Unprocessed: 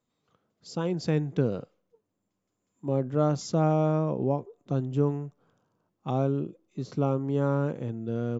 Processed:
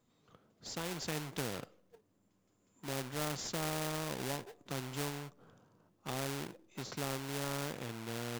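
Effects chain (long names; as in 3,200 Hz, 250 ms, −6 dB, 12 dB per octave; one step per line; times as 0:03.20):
in parallel at −10.5 dB: sample-rate reduction 1,200 Hz, jitter 20%
on the sum: every bin compressed towards the loudest bin 2 to 1
level −9 dB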